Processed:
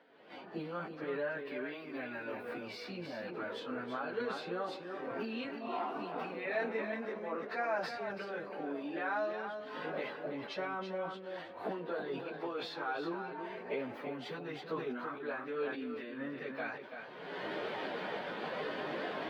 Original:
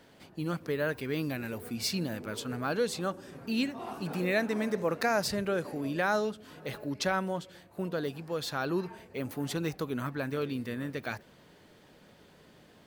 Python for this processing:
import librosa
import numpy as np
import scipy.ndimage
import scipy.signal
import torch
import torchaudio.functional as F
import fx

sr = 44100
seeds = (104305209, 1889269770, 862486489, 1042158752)

y = fx.recorder_agc(x, sr, target_db=-20.5, rise_db_per_s=55.0, max_gain_db=30)
y = scipy.signal.sosfilt(scipy.signal.butter(2, 400.0, 'highpass', fs=sr, output='sos'), y)
y = fx.comb_fb(y, sr, f0_hz=780.0, decay_s=0.23, harmonics='all', damping=0.0, mix_pct=50)
y = fx.stretch_vocoder_free(y, sr, factor=1.5)
y = fx.air_absorb(y, sr, metres=370.0)
y = y + 10.0 ** (-7.5 / 20.0) * np.pad(y, (int(333 * sr / 1000.0), 0))[:len(y)]
y = fx.sustainer(y, sr, db_per_s=66.0)
y = y * 10.0 ** (3.5 / 20.0)